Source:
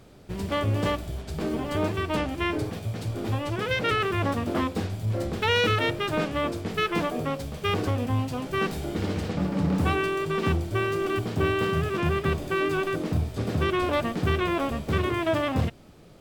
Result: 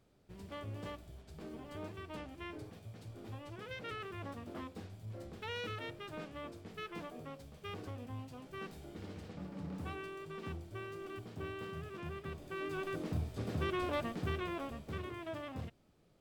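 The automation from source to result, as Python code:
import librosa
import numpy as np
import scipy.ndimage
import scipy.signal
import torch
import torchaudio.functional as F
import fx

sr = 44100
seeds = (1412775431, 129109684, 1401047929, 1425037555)

y = fx.gain(x, sr, db=fx.line((12.33, -19.0), (12.99, -11.0), (14.02, -11.0), (15.19, -18.5)))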